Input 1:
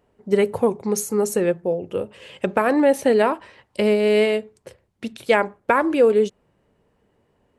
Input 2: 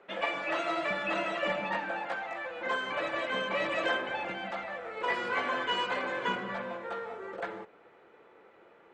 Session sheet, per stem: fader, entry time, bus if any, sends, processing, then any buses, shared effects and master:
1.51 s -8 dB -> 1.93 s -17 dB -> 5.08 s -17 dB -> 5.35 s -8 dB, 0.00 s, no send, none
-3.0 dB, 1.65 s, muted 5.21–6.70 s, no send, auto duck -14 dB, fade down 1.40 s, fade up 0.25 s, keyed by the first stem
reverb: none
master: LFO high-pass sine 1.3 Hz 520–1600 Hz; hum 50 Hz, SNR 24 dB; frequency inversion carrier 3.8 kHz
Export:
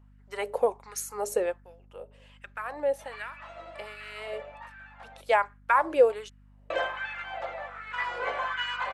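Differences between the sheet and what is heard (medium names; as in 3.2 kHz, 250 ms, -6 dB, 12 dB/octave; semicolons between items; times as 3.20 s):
stem 2: entry 1.65 s -> 2.90 s; master: missing frequency inversion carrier 3.8 kHz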